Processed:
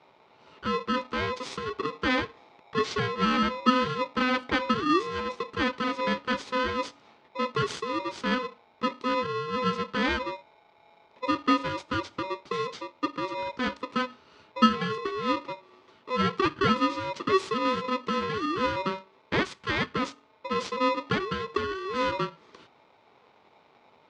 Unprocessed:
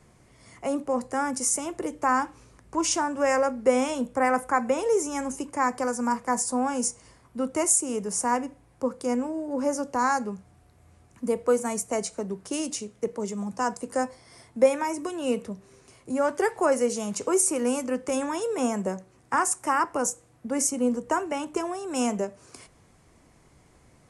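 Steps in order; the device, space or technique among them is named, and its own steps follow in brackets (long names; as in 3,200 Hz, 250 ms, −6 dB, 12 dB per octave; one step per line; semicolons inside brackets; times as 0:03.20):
ring modulator pedal into a guitar cabinet (ring modulator with a square carrier 760 Hz; loudspeaker in its box 99–3,900 Hz, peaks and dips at 410 Hz +4 dB, 660 Hz −5 dB, 1,700 Hz −6 dB, 2,800 Hz −4 dB)
0:19.43–0:19.93: parametric band 400 Hz −6 dB 1.5 octaves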